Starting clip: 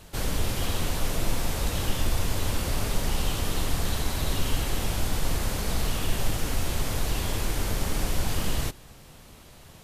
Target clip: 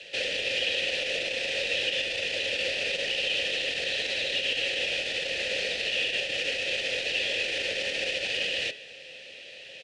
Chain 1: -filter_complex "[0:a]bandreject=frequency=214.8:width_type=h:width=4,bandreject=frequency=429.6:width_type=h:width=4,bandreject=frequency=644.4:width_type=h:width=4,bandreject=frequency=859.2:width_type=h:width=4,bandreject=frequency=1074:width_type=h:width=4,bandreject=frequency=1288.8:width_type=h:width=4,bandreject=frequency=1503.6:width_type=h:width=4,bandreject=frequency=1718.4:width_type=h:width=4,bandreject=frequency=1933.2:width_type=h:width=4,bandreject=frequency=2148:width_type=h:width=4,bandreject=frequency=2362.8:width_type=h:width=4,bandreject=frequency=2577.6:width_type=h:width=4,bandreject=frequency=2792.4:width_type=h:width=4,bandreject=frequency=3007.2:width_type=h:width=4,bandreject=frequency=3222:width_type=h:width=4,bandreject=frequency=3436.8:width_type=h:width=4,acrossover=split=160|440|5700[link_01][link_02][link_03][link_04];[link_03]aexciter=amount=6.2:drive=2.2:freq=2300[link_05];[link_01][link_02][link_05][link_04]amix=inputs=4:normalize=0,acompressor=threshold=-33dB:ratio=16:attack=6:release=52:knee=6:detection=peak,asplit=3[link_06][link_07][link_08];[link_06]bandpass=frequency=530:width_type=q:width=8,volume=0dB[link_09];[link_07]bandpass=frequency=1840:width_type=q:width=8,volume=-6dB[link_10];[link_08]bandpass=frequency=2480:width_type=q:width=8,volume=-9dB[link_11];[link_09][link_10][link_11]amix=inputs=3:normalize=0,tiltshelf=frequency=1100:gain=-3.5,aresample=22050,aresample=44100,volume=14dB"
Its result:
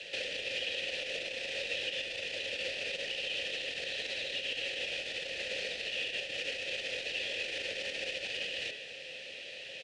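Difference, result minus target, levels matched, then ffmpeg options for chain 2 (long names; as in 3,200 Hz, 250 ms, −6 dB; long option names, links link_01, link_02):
downward compressor: peak gain reduction +9 dB
-filter_complex "[0:a]bandreject=frequency=214.8:width_type=h:width=4,bandreject=frequency=429.6:width_type=h:width=4,bandreject=frequency=644.4:width_type=h:width=4,bandreject=frequency=859.2:width_type=h:width=4,bandreject=frequency=1074:width_type=h:width=4,bandreject=frequency=1288.8:width_type=h:width=4,bandreject=frequency=1503.6:width_type=h:width=4,bandreject=frequency=1718.4:width_type=h:width=4,bandreject=frequency=1933.2:width_type=h:width=4,bandreject=frequency=2148:width_type=h:width=4,bandreject=frequency=2362.8:width_type=h:width=4,bandreject=frequency=2577.6:width_type=h:width=4,bandreject=frequency=2792.4:width_type=h:width=4,bandreject=frequency=3007.2:width_type=h:width=4,bandreject=frequency=3222:width_type=h:width=4,bandreject=frequency=3436.8:width_type=h:width=4,acrossover=split=160|440|5700[link_01][link_02][link_03][link_04];[link_03]aexciter=amount=6.2:drive=2.2:freq=2300[link_05];[link_01][link_02][link_05][link_04]amix=inputs=4:normalize=0,acompressor=threshold=-23.5dB:ratio=16:attack=6:release=52:knee=6:detection=peak,asplit=3[link_06][link_07][link_08];[link_06]bandpass=frequency=530:width_type=q:width=8,volume=0dB[link_09];[link_07]bandpass=frequency=1840:width_type=q:width=8,volume=-6dB[link_10];[link_08]bandpass=frequency=2480:width_type=q:width=8,volume=-9dB[link_11];[link_09][link_10][link_11]amix=inputs=3:normalize=0,tiltshelf=frequency=1100:gain=-3.5,aresample=22050,aresample=44100,volume=14dB"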